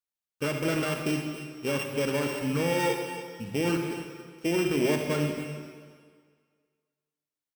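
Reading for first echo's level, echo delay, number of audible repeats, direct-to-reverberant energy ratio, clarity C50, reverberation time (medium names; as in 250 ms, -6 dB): -13.0 dB, 277 ms, 1, 3.5 dB, 4.0 dB, 1.9 s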